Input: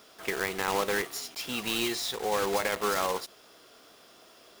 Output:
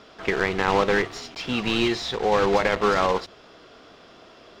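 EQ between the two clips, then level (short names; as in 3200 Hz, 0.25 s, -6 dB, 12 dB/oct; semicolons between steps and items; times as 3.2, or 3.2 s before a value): air absorption 160 m; low shelf 150 Hz +9.5 dB; notches 50/100 Hz; +8.0 dB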